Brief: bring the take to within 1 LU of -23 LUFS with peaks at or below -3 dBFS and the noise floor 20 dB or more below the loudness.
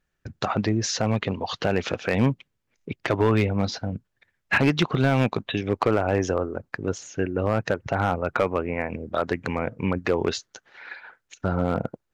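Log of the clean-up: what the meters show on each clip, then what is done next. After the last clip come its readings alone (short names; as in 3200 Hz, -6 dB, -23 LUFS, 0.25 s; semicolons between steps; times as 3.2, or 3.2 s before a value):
clipped 0.5%; flat tops at -12.0 dBFS; loudness -25.5 LUFS; peak -12.0 dBFS; loudness target -23.0 LUFS
-> clip repair -12 dBFS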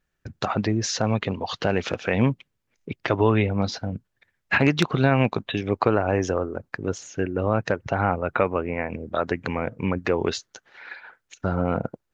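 clipped 0.0%; loudness -25.0 LUFS; peak -3.0 dBFS; loudness target -23.0 LUFS
-> gain +2 dB; limiter -3 dBFS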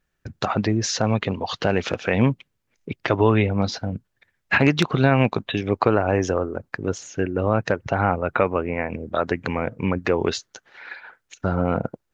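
loudness -23.0 LUFS; peak -3.0 dBFS; noise floor -75 dBFS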